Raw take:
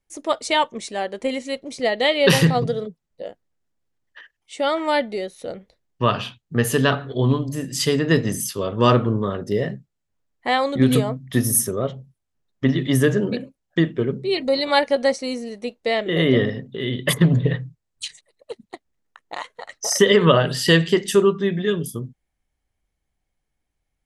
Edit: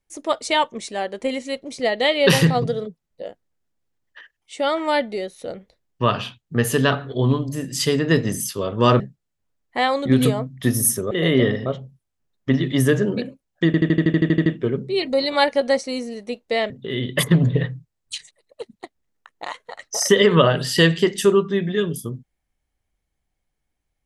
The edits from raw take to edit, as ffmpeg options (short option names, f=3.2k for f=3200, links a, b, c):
-filter_complex "[0:a]asplit=15[a][b][c][d][e][f][g][h][i][j][k][l][m][n][o];[a]atrim=end=9.002[p];[b]atrim=start=9.698:end=11.812[q];[c]atrim=start=16.048:end=16.602[r];[d]atrim=start=11.808:end=13.892[s];[e]atrim=start=13.808:end=13.892[t];[f]atrim=start=13.808:end=13.892[u];[g]atrim=start=13.808:end=13.892[v];[h]atrim=start=13.808:end=13.892[w];[i]atrim=start=13.808:end=13.892[x];[j]atrim=start=13.808:end=13.892[y];[k]atrim=start=13.808:end=13.892[z];[l]atrim=start=13.808:end=13.892[aa];[m]atrim=start=13.808:end=13.892[ab];[n]atrim=start=13.808:end=16.052[ac];[o]atrim=start=16.598[ad];[p][q]acrossfade=d=0.004:c1=hsin:c2=hsin[ae];[ae][r]acrossfade=d=0.004:c1=hsin:c2=hsin[af];[af][s]acrossfade=d=0.004:c1=hsin:c2=hsin[ag];[ag][t]acrossfade=d=0.004:c1=hsin:c2=hsin[ah];[ah][u]acrossfade=d=0.004:c1=hsin:c2=hsin[ai];[ai][v]acrossfade=d=0.004:c1=hsin:c2=hsin[aj];[aj][w]acrossfade=d=0.004:c1=hsin:c2=hsin[ak];[ak][x]acrossfade=d=0.004:c1=hsin:c2=hsin[al];[al][y]acrossfade=d=0.004:c1=hsin:c2=hsin[am];[am][z]acrossfade=d=0.004:c1=hsin:c2=hsin[an];[an][aa]acrossfade=d=0.004:c1=hsin:c2=hsin[ao];[ao][ab]acrossfade=d=0.004:c1=hsin:c2=hsin[ap];[ap][ac]acrossfade=d=0.004:c1=hsin:c2=hsin[aq];[aq][ad]acrossfade=d=0.004:c1=hsin:c2=hsin"